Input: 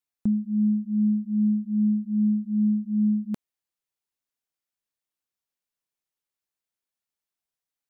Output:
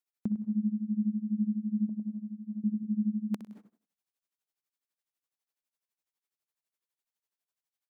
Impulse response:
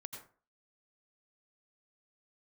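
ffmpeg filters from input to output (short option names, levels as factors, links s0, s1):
-filter_complex "[0:a]asettb=1/sr,asplit=3[s0][s1][s2];[s0]atrim=end=1.894[s3];[s1]atrim=start=1.89:end=2.64,asetpts=PTS-STARTPTS,afade=t=in:d=0.004:c=qsin,afade=t=out:st=0.746:d=0.004:c=qsin,acompressor=threshold=0.0316:ratio=6[s4];[s2]atrim=start=2.636[s5];[s3][s4]acrossfade=d=0.004:c1=hsin:c2=qsin[s6];[s6][s5]acrossfade=d=0.004:c1=qsin:c2=hsin,highpass=f=240:p=1,aecho=1:1:63|126|189|252:0.188|0.0791|0.0332|0.014,asplit=2[s7][s8];[1:a]atrim=start_sample=2205,adelay=103[s9];[s8][s9]afir=irnorm=-1:irlink=0,volume=0.708[s10];[s7][s10]amix=inputs=2:normalize=0,tremolo=f=12:d=0.9"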